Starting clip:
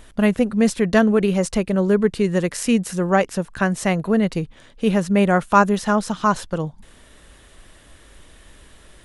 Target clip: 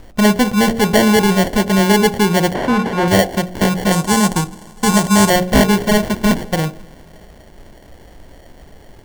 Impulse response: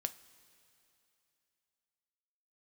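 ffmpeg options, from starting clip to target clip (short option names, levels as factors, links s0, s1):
-filter_complex "[0:a]asplit=2[s0][s1];[1:a]atrim=start_sample=2205[s2];[s1][s2]afir=irnorm=-1:irlink=0,volume=1.06[s3];[s0][s3]amix=inputs=2:normalize=0,acrusher=samples=35:mix=1:aa=0.000001,asettb=1/sr,asplit=3[s4][s5][s6];[s4]atrim=end=3.924[s7];[s5]atrim=start=3.92:end=5.3,asetpts=PTS-STARTPTS,afade=t=in:d=0.004:c=qsin,afade=t=out:st=1.376:d=0.004:c=qsin,equalizer=f=500:t=o:w=1:g=-5,equalizer=f=1000:t=o:w=1:g=6,equalizer=f=2000:t=o:w=1:g=-4,equalizer=f=8000:t=o:w=1:g=10[s8];[s6]atrim=start=5.296[s9];[s7][s8]acrossfade=d=0.004:c1=hsin:c2=qsin[s10];[s10][s9]acrossfade=d=0.004:c1=qsin:c2=hsin,asoftclip=type=tanh:threshold=0.596,bandreject=f=45.49:t=h:w=4,bandreject=f=90.98:t=h:w=4,bandreject=f=136.47:t=h:w=4,bandreject=f=181.96:t=h:w=4,bandreject=f=227.45:t=h:w=4,bandreject=f=272.94:t=h:w=4,bandreject=f=318.43:t=h:w=4,bandreject=f=363.92:t=h:w=4,bandreject=f=409.41:t=h:w=4,bandreject=f=454.9:t=h:w=4,bandreject=f=500.39:t=h:w=4,bandreject=f=545.88:t=h:w=4,bandreject=f=591.37:t=h:w=4,bandreject=f=636.86:t=h:w=4,bandreject=f=682.35:t=h:w=4,bandreject=f=727.84:t=h:w=4,bandreject=f=773.33:t=h:w=4,bandreject=f=818.82:t=h:w=4,asettb=1/sr,asplit=3[s11][s12][s13];[s11]atrim=end=2.544[s14];[s12]atrim=start=2.54:end=3.08,asetpts=PTS-STARTPTS,afade=t=in:d=0.004:c=qsin,afade=t=out:st=0.536:d=0.004:c=qsin,asplit=2[s15][s16];[s16]highpass=f=720:p=1,volume=7.08,asoftclip=type=tanh:threshold=0.473[s17];[s15][s17]amix=inputs=2:normalize=0,lowpass=f=1600:p=1,volume=0.501[s18];[s13]atrim=start=3.076[s19];[s14][s18]acrossfade=d=0.004:c1=hsin:c2=qsin[s20];[s20][s19]acrossfade=d=0.004:c1=qsin:c2=hsin,volume=1.12"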